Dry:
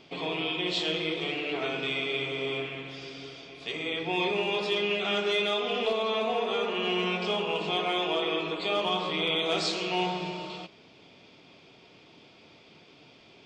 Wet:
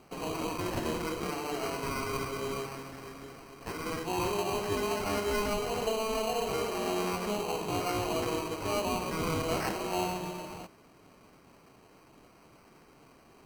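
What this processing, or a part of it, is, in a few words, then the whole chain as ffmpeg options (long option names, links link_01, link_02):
crushed at another speed: -af "asetrate=22050,aresample=44100,acrusher=samples=25:mix=1:aa=0.000001,asetrate=88200,aresample=44100,volume=-3dB"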